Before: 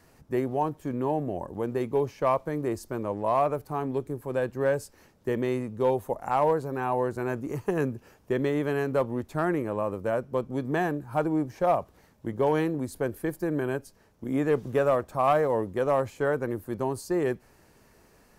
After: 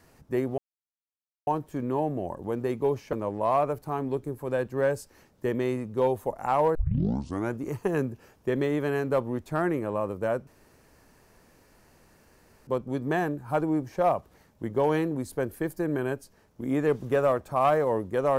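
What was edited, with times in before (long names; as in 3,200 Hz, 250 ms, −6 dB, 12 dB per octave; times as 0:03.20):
0:00.58: splice in silence 0.89 s
0:02.24–0:02.96: remove
0:06.58: tape start 0.78 s
0:10.30: splice in room tone 2.20 s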